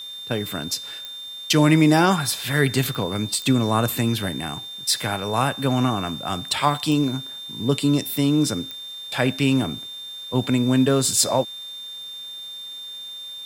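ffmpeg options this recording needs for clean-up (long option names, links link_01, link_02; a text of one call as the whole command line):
ffmpeg -i in.wav -af "adeclick=threshold=4,bandreject=frequency=3600:width=30,agate=range=-21dB:threshold=-28dB" out.wav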